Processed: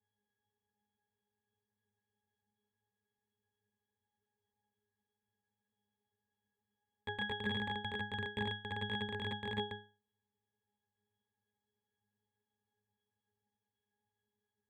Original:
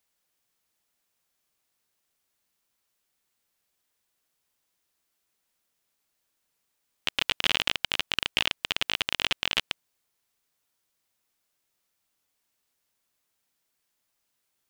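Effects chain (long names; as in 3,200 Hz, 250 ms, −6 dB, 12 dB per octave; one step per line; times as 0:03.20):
bad sample-rate conversion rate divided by 8×, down filtered, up hold
resonances in every octave G#, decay 0.35 s
level +14.5 dB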